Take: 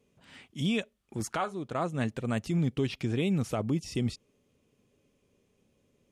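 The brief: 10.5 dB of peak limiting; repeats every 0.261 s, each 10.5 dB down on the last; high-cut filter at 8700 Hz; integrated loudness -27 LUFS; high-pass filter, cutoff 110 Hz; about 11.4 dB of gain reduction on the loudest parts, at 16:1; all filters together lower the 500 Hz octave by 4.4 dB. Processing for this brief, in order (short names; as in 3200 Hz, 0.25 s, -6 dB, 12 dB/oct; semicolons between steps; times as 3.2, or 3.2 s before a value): HPF 110 Hz; LPF 8700 Hz; bell 500 Hz -6 dB; compressor 16:1, threshold -37 dBFS; limiter -34.5 dBFS; feedback echo 0.261 s, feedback 30%, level -10.5 dB; gain +18 dB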